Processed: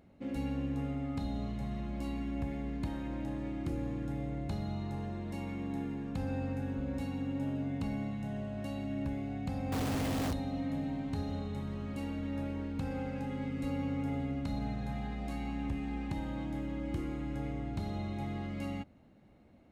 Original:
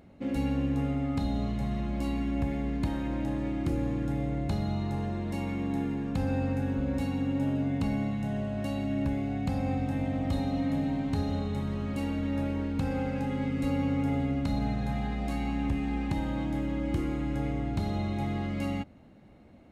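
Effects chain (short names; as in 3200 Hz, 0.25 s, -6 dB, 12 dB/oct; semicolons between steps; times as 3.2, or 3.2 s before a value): 9.72–10.33 companded quantiser 2-bit; gain -6.5 dB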